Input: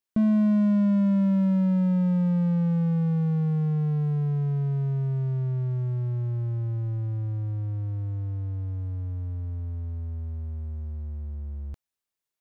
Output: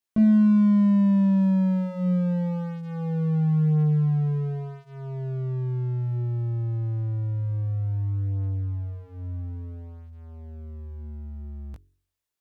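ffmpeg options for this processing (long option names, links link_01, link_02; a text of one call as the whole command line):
ffmpeg -i in.wav -af "flanger=delay=18:depth=2.9:speed=0.19,bandreject=frequency=45.94:width_type=h:width=4,bandreject=frequency=91.88:width_type=h:width=4,bandreject=frequency=137.82:width_type=h:width=4,bandreject=frequency=183.76:width_type=h:width=4,bandreject=frequency=229.7:width_type=h:width=4,bandreject=frequency=275.64:width_type=h:width=4,bandreject=frequency=321.58:width_type=h:width=4,bandreject=frequency=367.52:width_type=h:width=4,bandreject=frequency=413.46:width_type=h:width=4,volume=4.5dB" out.wav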